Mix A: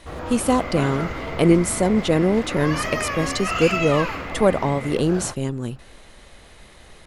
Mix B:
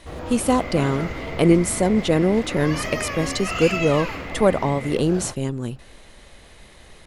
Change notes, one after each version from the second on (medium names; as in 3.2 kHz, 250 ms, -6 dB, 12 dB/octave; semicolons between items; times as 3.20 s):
first sound: add peaking EQ 1.3 kHz -5 dB 1.3 oct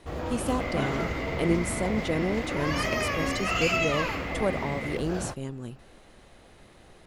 speech -10.0 dB